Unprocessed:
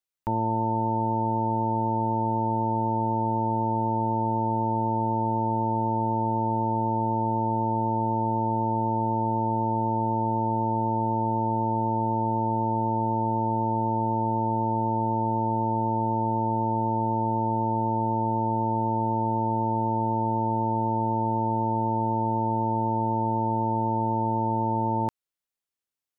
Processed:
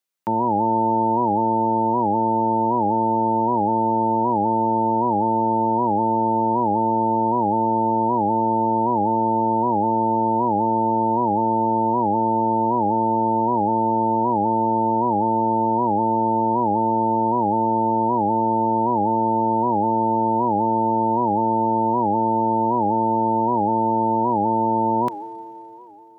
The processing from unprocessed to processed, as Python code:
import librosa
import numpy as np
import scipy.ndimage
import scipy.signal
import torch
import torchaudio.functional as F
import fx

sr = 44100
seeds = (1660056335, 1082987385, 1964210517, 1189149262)

y = scipy.signal.sosfilt(scipy.signal.butter(4, 140.0, 'highpass', fs=sr, output='sos'), x)
y = fx.rev_schroeder(y, sr, rt60_s=3.6, comb_ms=29, drr_db=14.5)
y = fx.record_warp(y, sr, rpm=78.0, depth_cents=160.0)
y = F.gain(torch.from_numpy(y), 5.5).numpy()